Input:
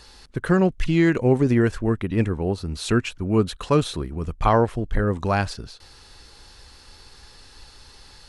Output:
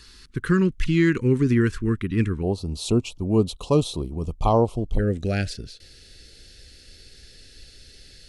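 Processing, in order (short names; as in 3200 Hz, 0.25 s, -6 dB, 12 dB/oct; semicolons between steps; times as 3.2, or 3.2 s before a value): Butterworth band-stop 680 Hz, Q 0.85, from 2.42 s 1700 Hz, from 4.98 s 990 Hz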